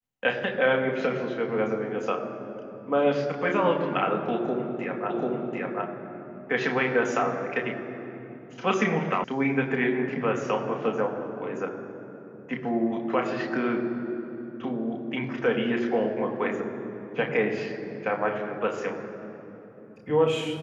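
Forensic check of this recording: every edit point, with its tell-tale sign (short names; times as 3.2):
5.1 repeat of the last 0.74 s
9.24 sound cut off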